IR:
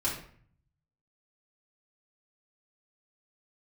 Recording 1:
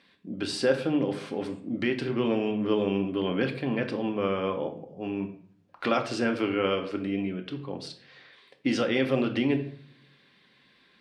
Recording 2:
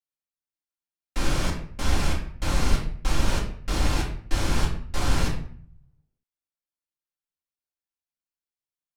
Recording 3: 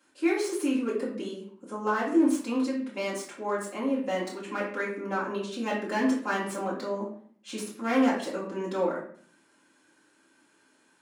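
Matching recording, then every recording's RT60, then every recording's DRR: 3; 0.55, 0.55, 0.55 seconds; 4.5, −3.5, −7.5 decibels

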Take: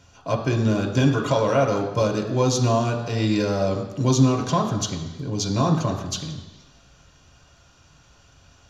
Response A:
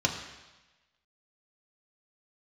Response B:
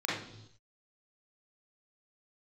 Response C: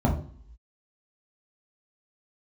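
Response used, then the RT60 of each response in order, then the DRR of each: A; 1.1 s, non-exponential decay, non-exponential decay; 0.5, −6.5, −2.5 decibels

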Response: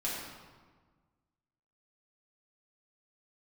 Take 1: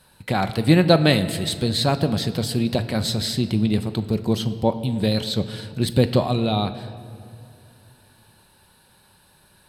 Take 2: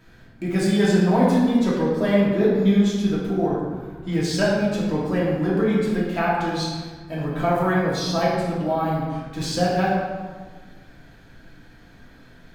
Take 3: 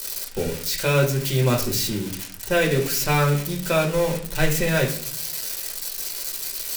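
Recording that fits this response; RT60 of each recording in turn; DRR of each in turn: 2; 2.6, 1.5, 0.55 seconds; 9.0, −7.5, −1.5 decibels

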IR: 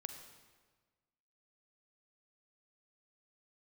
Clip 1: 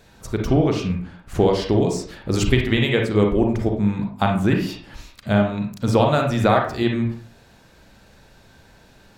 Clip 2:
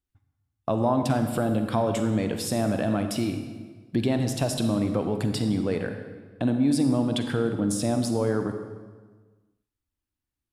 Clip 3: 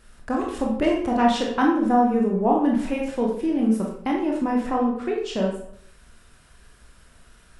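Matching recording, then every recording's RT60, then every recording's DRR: 2; 0.45, 1.4, 0.70 seconds; 1.5, 6.0, −1.5 decibels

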